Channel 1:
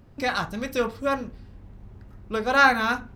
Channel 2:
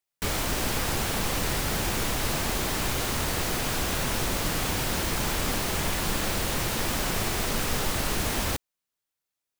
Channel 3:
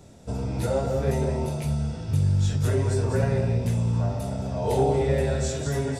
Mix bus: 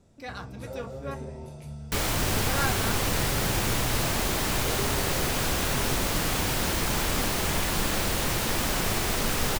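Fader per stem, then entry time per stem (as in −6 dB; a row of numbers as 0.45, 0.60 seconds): −13.5, +1.0, −13.5 decibels; 0.00, 1.70, 0.00 seconds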